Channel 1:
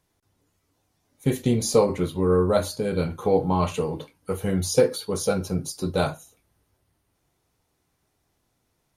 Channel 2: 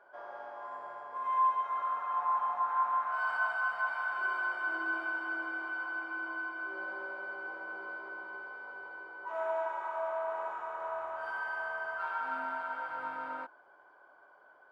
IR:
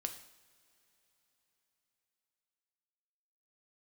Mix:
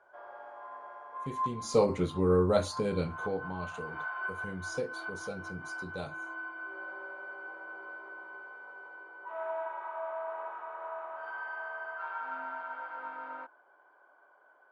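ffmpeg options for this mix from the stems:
-filter_complex "[0:a]lowpass=frequency=8500:width=0.5412,lowpass=frequency=8500:width=1.3066,volume=-5dB,afade=type=in:start_time=1.62:duration=0.2:silence=0.251189,afade=type=out:start_time=2.86:duration=0.54:silence=0.266073,asplit=2[link_01][link_02];[1:a]acrossover=split=200 3900:gain=0.112 1 0.178[link_03][link_04][link_05];[link_03][link_04][link_05]amix=inputs=3:normalize=0,volume=-2.5dB[link_06];[link_02]apad=whole_len=648854[link_07];[link_06][link_07]sidechaincompress=threshold=-45dB:ratio=8:attack=9.4:release=143[link_08];[link_01][link_08]amix=inputs=2:normalize=0"

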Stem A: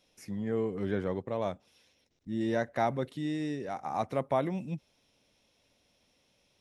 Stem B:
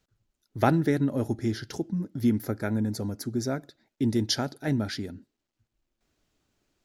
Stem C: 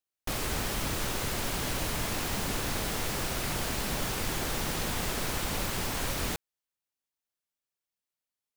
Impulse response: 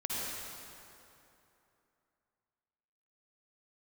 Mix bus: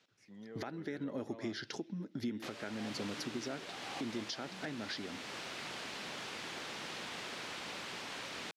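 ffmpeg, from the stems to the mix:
-filter_complex "[0:a]dynaudnorm=framelen=150:gausssize=7:maxgain=12dB,alimiter=limit=-22.5dB:level=0:latency=1,volume=-17.5dB[link_01];[1:a]acompressor=threshold=-36dB:ratio=3,volume=2.5dB[link_02];[2:a]adelay=2150,volume=-12dB[link_03];[link_01][link_02][link_03]amix=inputs=3:normalize=0,highpass=210,lowpass=3400,highshelf=frequency=2200:gain=12,alimiter=level_in=5.5dB:limit=-24dB:level=0:latency=1:release=430,volume=-5.5dB"

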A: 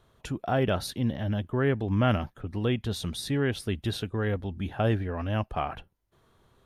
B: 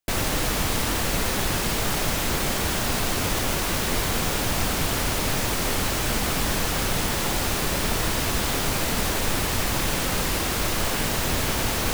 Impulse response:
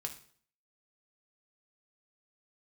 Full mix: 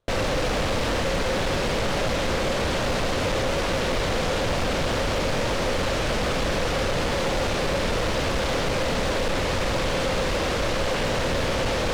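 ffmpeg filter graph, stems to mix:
-filter_complex "[0:a]volume=-13dB[link_01];[1:a]lowpass=4600,volume=2dB[link_02];[link_01][link_02]amix=inputs=2:normalize=0,equalizer=frequency=530:width=3.8:gain=11,volume=20.5dB,asoftclip=hard,volume=-20.5dB"

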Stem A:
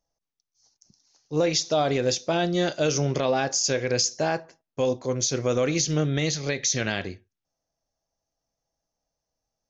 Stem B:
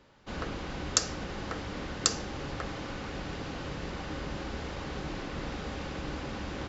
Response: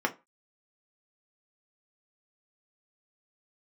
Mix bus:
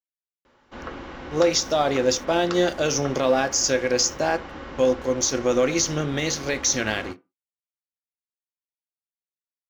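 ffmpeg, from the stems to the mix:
-filter_complex "[0:a]highshelf=frequency=4600:gain=5.5,aeval=exprs='sgn(val(0))*max(abs(val(0))-0.00596,0)':channel_layout=same,volume=-1.5dB,asplit=2[link_01][link_02];[link_02]volume=-11.5dB[link_03];[1:a]acrossover=split=4200[link_04][link_05];[link_05]acompressor=threshold=-59dB:ratio=4:attack=1:release=60[link_06];[link_04][link_06]amix=inputs=2:normalize=0,adelay=450,volume=-3dB,asplit=2[link_07][link_08];[link_08]volume=-10.5dB[link_09];[2:a]atrim=start_sample=2205[link_10];[link_03][link_09]amix=inputs=2:normalize=0[link_11];[link_11][link_10]afir=irnorm=-1:irlink=0[link_12];[link_01][link_07][link_12]amix=inputs=3:normalize=0"

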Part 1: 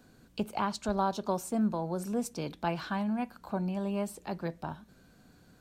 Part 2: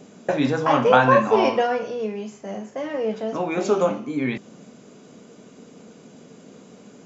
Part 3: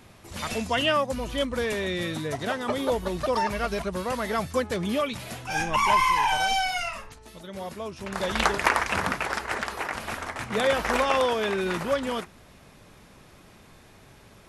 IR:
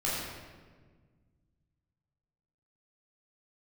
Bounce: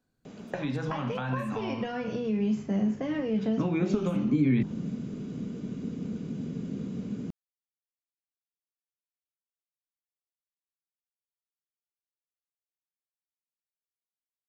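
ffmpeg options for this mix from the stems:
-filter_complex "[0:a]volume=-19dB,asplit=3[link_01][link_02][link_03];[link_01]atrim=end=1.55,asetpts=PTS-STARTPTS,afade=type=out:start_time=1.546:duration=0.004:curve=hsin[link_04];[link_02]atrim=start=1.55:end=3.96,asetpts=PTS-STARTPTS,volume=0[link_05];[link_03]atrim=start=3.96,asetpts=PTS-STARTPTS,afade=type=in:duration=0.004:curve=hsin[link_06];[link_04][link_05][link_06]concat=n=3:v=0:a=1[link_07];[1:a]acrossover=split=130|1900[link_08][link_09][link_10];[link_08]acompressor=threshold=-47dB:ratio=4[link_11];[link_09]acompressor=threshold=-28dB:ratio=4[link_12];[link_10]acompressor=threshold=-39dB:ratio=4[link_13];[link_11][link_12][link_13]amix=inputs=3:normalize=0,adelay=250,volume=0dB,lowpass=4800,acompressor=threshold=-29dB:ratio=6,volume=0dB[link_14];[link_07][link_14]amix=inputs=2:normalize=0,asubboost=boost=10:cutoff=220"

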